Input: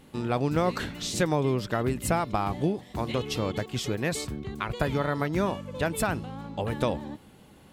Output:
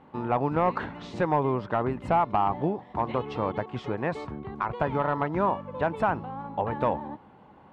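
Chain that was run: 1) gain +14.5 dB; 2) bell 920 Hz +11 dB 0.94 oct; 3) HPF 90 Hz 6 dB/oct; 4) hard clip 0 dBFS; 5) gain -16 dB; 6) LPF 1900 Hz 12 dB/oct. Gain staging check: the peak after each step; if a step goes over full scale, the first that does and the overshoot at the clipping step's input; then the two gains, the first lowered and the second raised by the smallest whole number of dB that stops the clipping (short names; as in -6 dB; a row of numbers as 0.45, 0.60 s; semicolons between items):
+4.5, +8.0, +8.0, 0.0, -16.0, -15.5 dBFS; step 1, 8.0 dB; step 1 +6.5 dB, step 5 -8 dB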